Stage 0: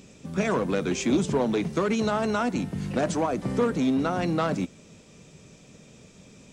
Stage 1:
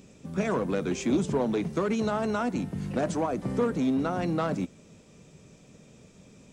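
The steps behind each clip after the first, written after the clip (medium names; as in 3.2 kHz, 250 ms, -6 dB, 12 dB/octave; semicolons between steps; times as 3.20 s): peaking EQ 4 kHz -4 dB 2.7 oct; trim -2 dB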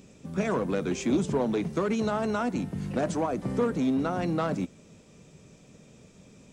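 no audible change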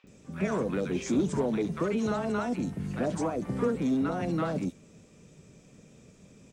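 three bands offset in time mids, lows, highs 40/70 ms, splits 850/3700 Hz; trim -1 dB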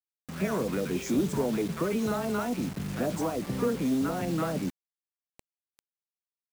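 bit crusher 7-bit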